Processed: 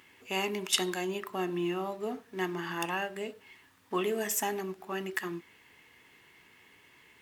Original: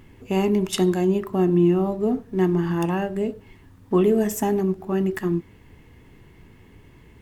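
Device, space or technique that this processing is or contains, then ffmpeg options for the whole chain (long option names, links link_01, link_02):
filter by subtraction: -filter_complex "[0:a]asplit=2[link_01][link_02];[link_02]lowpass=2300,volume=-1[link_03];[link_01][link_03]amix=inputs=2:normalize=0"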